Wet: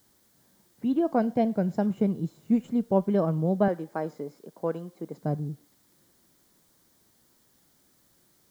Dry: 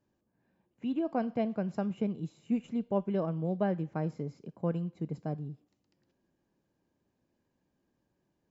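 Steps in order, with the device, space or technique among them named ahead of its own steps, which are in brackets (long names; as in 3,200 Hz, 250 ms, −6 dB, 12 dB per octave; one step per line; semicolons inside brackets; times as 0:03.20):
0:01.20–0:01.87: parametric band 1,200 Hz −11.5 dB 0.32 octaves
0:03.68–0:05.22: high-pass filter 360 Hz 12 dB per octave
plain cassette with noise reduction switched in (one half of a high-frequency compander decoder only; tape wow and flutter; white noise bed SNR 36 dB)
parametric band 2,600 Hz −10 dB 0.38 octaves
level +7 dB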